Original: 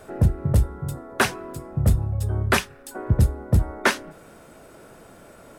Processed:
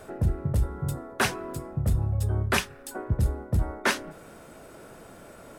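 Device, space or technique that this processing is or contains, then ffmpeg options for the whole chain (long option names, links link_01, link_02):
compression on the reversed sound: -af "areverse,acompressor=threshold=-21dB:ratio=4,areverse"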